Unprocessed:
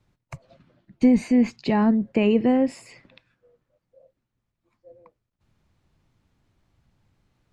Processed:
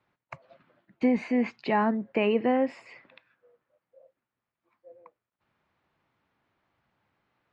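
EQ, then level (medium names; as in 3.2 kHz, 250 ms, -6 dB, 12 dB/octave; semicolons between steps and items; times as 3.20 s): band-pass filter 1.9 kHz, Q 0.58; distance through air 55 m; treble shelf 2.9 kHz -11.5 dB; +5.5 dB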